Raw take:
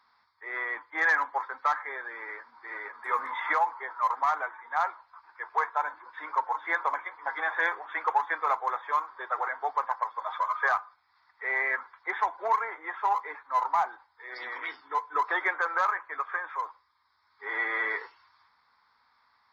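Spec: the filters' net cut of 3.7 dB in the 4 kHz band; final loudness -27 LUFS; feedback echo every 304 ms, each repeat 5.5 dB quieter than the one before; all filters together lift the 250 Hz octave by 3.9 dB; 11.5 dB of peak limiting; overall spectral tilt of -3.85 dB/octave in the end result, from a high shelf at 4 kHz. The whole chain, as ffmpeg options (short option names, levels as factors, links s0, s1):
-af "equalizer=f=250:t=o:g=6.5,highshelf=f=4000:g=5.5,equalizer=f=4000:t=o:g=-7.5,alimiter=level_in=1.26:limit=0.0631:level=0:latency=1,volume=0.794,aecho=1:1:304|608|912|1216|1520|1824|2128:0.531|0.281|0.149|0.079|0.0419|0.0222|0.0118,volume=2.51"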